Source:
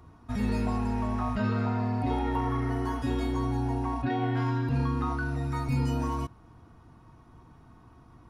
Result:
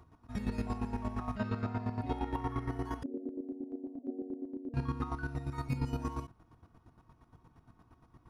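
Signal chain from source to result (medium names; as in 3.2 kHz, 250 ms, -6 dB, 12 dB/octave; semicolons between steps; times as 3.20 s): 0.94–1.51 s: crackle 110 per s -51 dBFS; 3.03–4.74 s: Chebyshev band-pass 240–610 Hz, order 4; square tremolo 8.6 Hz, depth 65%, duty 30%; trim -3.5 dB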